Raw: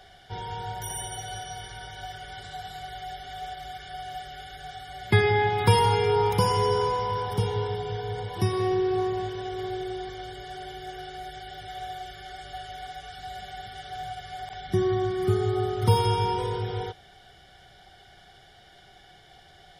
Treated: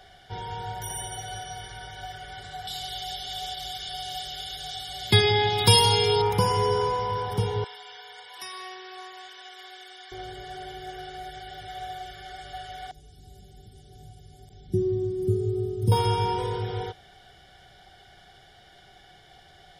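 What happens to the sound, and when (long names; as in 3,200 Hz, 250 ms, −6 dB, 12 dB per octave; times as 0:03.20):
0:02.67–0:06.22: high shelf with overshoot 2,600 Hz +11 dB, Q 1.5
0:07.64–0:10.12: high-pass filter 1,400 Hz
0:12.91–0:15.92: drawn EQ curve 360 Hz 0 dB, 920 Hz −28 dB, 1,900 Hz −25 dB, 8,200 Hz −4 dB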